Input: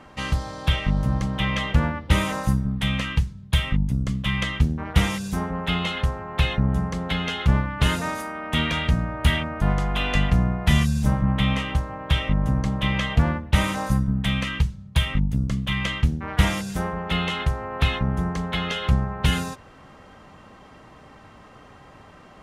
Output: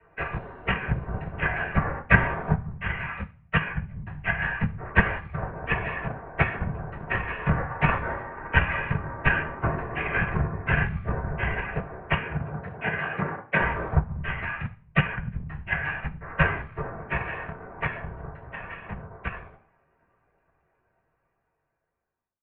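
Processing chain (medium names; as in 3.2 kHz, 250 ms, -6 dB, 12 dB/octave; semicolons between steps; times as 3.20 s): fade out at the end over 6.76 s; whisper effect; reverberation RT60 0.45 s, pre-delay 3 ms, DRR -4 dB; transient shaper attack +7 dB, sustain +3 dB; bass shelf 150 Hz -10.5 dB; mistuned SSB -340 Hz 190–2600 Hz; 12.21–13.59 s: high-pass 70 Hz -> 230 Hz 12 dB/octave; upward expansion 1.5:1, over -28 dBFS; trim -10.5 dB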